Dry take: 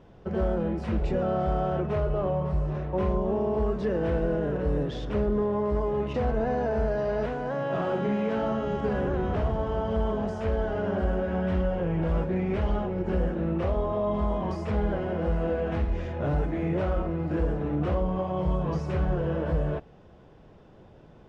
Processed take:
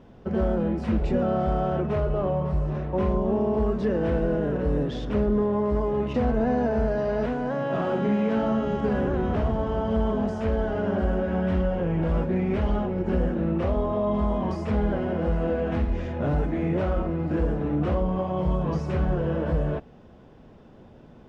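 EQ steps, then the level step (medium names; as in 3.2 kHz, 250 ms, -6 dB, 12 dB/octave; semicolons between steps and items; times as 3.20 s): peaking EQ 240 Hz +8.5 dB 0.3 oct; +1.5 dB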